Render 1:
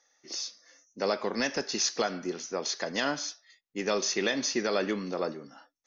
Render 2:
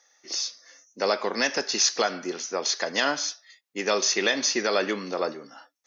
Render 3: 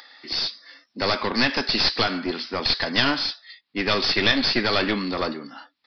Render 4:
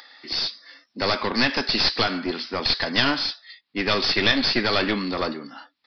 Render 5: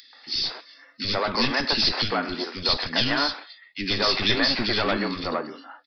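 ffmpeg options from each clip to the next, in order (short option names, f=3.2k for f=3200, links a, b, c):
-af "highpass=f=480:p=1,volume=6.5dB"
-af "equalizer=f=125:t=o:w=1:g=6,equalizer=f=250:t=o:w=1:g=12,equalizer=f=500:t=o:w=1:g=-3,equalizer=f=1k:t=o:w=1:g=6,equalizer=f=2k:t=o:w=1:g=5,equalizer=f=4k:t=o:w=1:g=11,aresample=11025,aeval=exprs='clip(val(0),-1,0.075)':c=same,aresample=44100,acompressor=mode=upward:threshold=-37dB:ratio=2.5,volume=-1dB"
-af anull
-filter_complex "[0:a]acrossover=split=320|2200[a][b][c];[a]adelay=30[d];[b]adelay=130[e];[d][e][c]amix=inputs=3:normalize=0"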